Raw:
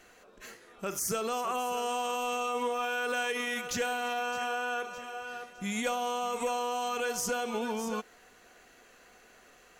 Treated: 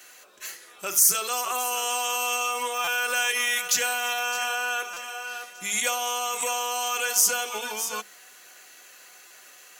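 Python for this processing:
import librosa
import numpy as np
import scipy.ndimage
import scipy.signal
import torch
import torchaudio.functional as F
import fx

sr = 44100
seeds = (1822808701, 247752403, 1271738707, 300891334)

y = scipy.signal.sosfilt(scipy.signal.butter(2, 51.0, 'highpass', fs=sr, output='sos'), x)
y = fx.tilt_eq(y, sr, slope=4.0)
y = fx.hum_notches(y, sr, base_hz=50, count=4)
y = fx.notch_comb(y, sr, f0_hz=230.0)
y = fx.buffer_glitch(y, sr, at_s=(2.84, 4.93, 9.27), block=256, repeats=5)
y = y * 10.0 ** (4.5 / 20.0)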